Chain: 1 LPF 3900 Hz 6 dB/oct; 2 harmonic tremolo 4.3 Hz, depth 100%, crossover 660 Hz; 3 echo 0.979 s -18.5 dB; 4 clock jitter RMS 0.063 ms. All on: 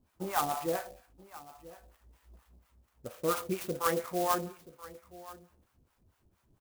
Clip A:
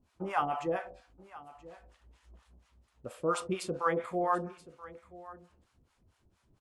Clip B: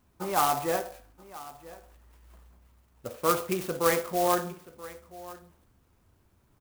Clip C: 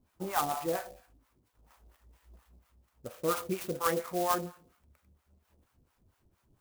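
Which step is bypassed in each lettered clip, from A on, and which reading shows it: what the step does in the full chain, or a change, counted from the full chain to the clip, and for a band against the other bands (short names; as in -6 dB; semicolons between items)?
4, 8 kHz band -7.5 dB; 2, 125 Hz band -1.5 dB; 3, momentary loudness spread change -3 LU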